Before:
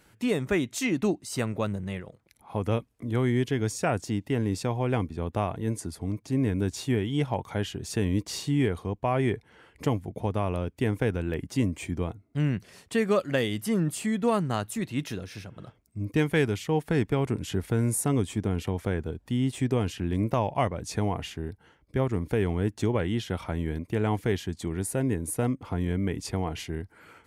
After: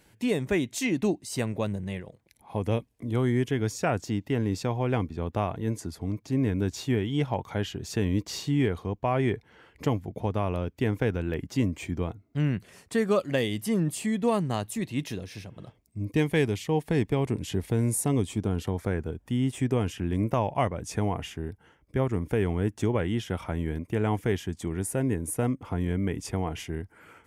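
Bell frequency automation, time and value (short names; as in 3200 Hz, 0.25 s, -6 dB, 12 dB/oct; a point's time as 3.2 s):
bell -9 dB 0.32 oct
3.06 s 1300 Hz
3.75 s 9300 Hz
12.38 s 9300 Hz
13.28 s 1400 Hz
18.18 s 1400 Hz
19.14 s 4200 Hz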